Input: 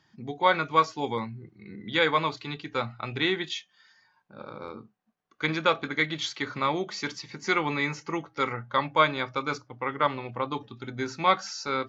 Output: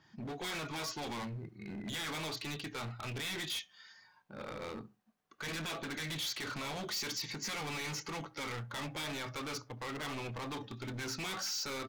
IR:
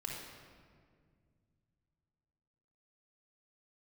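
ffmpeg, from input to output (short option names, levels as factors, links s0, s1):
-filter_complex "[0:a]asettb=1/sr,asplit=3[s0][s1][s2];[s0]atrim=end=6.854[s3];[s1]atrim=start=6.85:end=7.34,asetpts=PTS-STARTPTS,afade=t=in:d=0.004:c=qsin,afade=t=out:st=0.486:d=0.004:c=qsin,highshelf=f=4000:g=5[s4];[s2]atrim=start=7.336[s5];[s3][s4]acrossfade=d=0.004:c1=hsin:c2=qsin[s6];[s6][s5]acrossfade=d=0.004:c1=qsin:c2=hsin,afftfilt=real='re*lt(hypot(re,im),0.251)':imag='im*lt(hypot(re,im),0.251)':win_size=1024:overlap=0.75,alimiter=limit=0.0631:level=0:latency=1:release=39,asoftclip=type=hard:threshold=0.0106,asplit=2[s7][s8];[s8]adelay=68,lowpass=f=1200:p=1,volume=0.0891,asplit=2[s9][s10];[s10]adelay=68,lowpass=f=1200:p=1,volume=0.33[s11];[s7][s9][s11]amix=inputs=3:normalize=0,adynamicequalizer=threshold=0.00178:dfrequency=2600:dqfactor=0.7:tfrequency=2600:tqfactor=0.7:attack=5:release=100:ratio=0.375:range=2:mode=boostabove:tftype=highshelf,volume=1.12"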